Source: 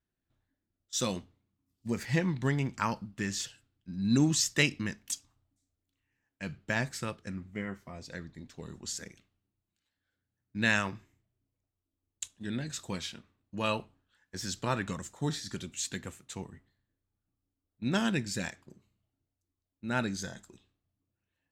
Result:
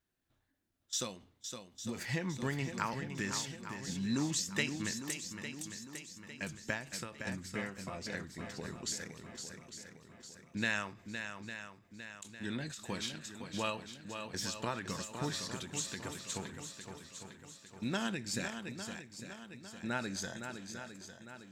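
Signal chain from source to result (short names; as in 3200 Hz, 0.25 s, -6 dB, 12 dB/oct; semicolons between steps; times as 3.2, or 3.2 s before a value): low shelf 280 Hz -6.5 dB; compressor 2:1, threshold -43 dBFS, peak gain reduction 12 dB; on a send: swung echo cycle 0.854 s, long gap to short 1.5:1, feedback 45%, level -8 dB; on the sum: ending taper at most 120 dB/s; gain +4.5 dB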